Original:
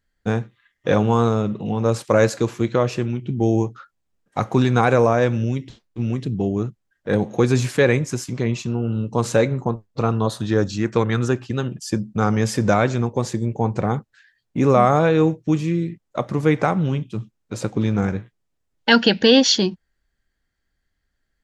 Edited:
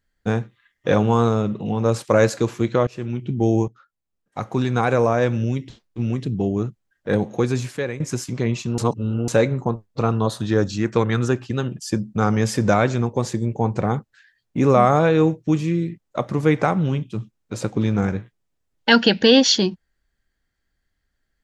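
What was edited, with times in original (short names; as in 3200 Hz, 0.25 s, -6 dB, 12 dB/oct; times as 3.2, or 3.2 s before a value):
2.87–3.18 fade in, from -23.5 dB
3.68–5.53 fade in, from -13.5 dB
7.1–8 fade out, to -15 dB
8.78–9.28 reverse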